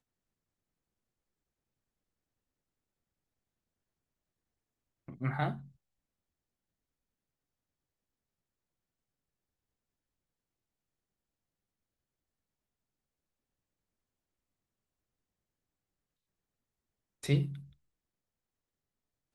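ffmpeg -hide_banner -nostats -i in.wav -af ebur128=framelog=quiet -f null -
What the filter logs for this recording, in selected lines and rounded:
Integrated loudness:
  I:         -34.5 LUFS
  Threshold: -46.2 LUFS
Loudness range:
  LRA:         5.1 LU
  Threshold: -62.3 LUFS
  LRA low:   -45.5 LUFS
  LRA high:  -40.4 LUFS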